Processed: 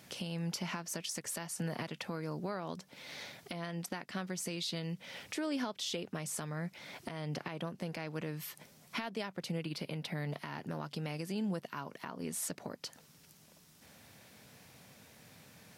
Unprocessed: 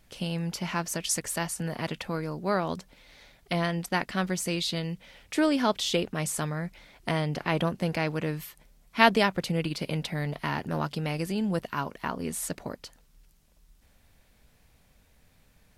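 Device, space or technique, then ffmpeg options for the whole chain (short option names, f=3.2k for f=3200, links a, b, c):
broadcast voice chain: -filter_complex "[0:a]highpass=f=110:w=0.5412,highpass=f=110:w=1.3066,deesser=0.5,acompressor=threshold=-45dB:ratio=3,equalizer=f=5.5k:t=o:w=0.48:g=3,alimiter=level_in=10.5dB:limit=-24dB:level=0:latency=1:release=268,volume=-10.5dB,asettb=1/sr,asplit=3[a][b][c];[a]atrim=end=9.654[d];[b]atrim=start=9.65:end=10.3,asetpts=PTS-STARTPTS,afade=t=in:d=0.004:c=qsin,afade=t=out:st=0.646:d=0.004:c=qsin,equalizer=f=6.9k:t=o:w=0.83:g=-5.5[e];[c]atrim=start=10.296[f];[d][e]acrossfade=d=0.004:c1=hsin:c2=qsin[g];[g][f]acrossfade=d=0.004:c1=qsin:c2=hsin,volume=7.5dB"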